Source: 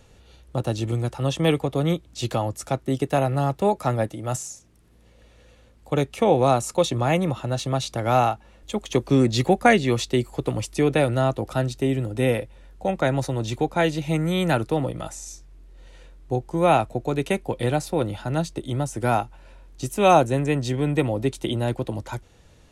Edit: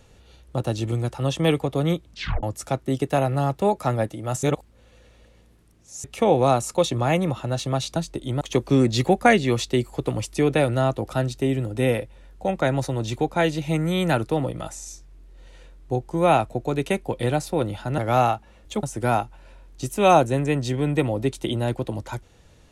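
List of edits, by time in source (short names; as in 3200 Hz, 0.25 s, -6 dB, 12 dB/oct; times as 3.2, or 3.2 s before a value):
2.09 tape stop 0.34 s
4.43–6.04 reverse
7.96–8.81 swap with 18.38–18.83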